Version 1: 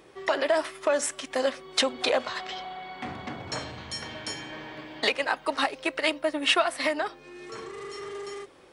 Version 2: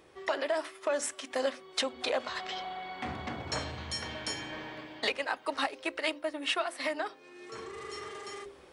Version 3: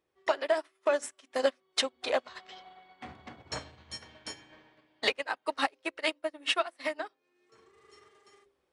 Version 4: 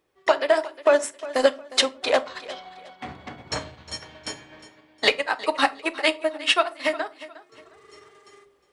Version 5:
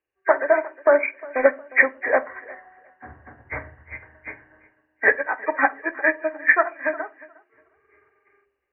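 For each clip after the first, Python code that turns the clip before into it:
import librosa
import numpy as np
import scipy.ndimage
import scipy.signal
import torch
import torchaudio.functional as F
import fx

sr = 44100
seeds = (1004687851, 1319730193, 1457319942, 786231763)

y1 = fx.peak_eq(x, sr, hz=69.0, db=15.0, octaves=0.3)
y1 = fx.hum_notches(y1, sr, base_hz=50, count=8)
y1 = fx.rider(y1, sr, range_db=4, speed_s=0.5)
y1 = F.gain(torch.from_numpy(y1), -5.0).numpy()
y2 = fx.upward_expand(y1, sr, threshold_db=-45.0, expansion=2.5)
y2 = F.gain(torch.from_numpy(y2), 6.0).numpy()
y3 = fx.echo_feedback(y2, sr, ms=358, feedback_pct=29, wet_db=-17)
y3 = fx.room_shoebox(y3, sr, seeds[0], volume_m3=230.0, walls='furnished', distance_m=0.36)
y3 = F.gain(torch.from_numpy(y3), 8.5).numpy()
y4 = fx.freq_compress(y3, sr, knee_hz=1500.0, ratio=4.0)
y4 = fx.peak_eq(y4, sr, hz=170.0, db=-14.5, octaves=0.43)
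y4 = fx.band_widen(y4, sr, depth_pct=40)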